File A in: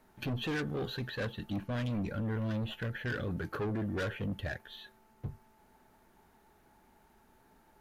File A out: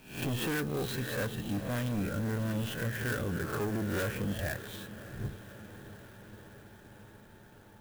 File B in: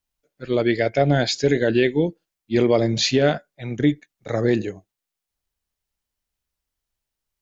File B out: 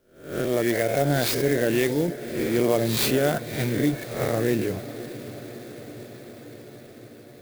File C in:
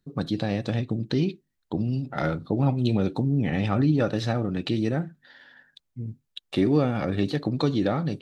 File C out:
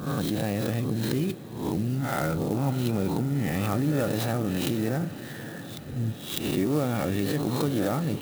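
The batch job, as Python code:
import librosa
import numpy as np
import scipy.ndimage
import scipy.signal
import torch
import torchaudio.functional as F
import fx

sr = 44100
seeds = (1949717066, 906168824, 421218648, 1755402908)

p1 = fx.spec_swells(x, sr, rise_s=0.52)
p2 = fx.over_compress(p1, sr, threshold_db=-32.0, ratio=-1.0)
p3 = p1 + (p2 * 10.0 ** (1.5 / 20.0))
p4 = fx.echo_diffused(p3, sr, ms=597, feedback_pct=73, wet_db=-15)
p5 = fx.clock_jitter(p4, sr, seeds[0], jitter_ms=0.04)
y = p5 * 10.0 ** (-6.0 / 20.0)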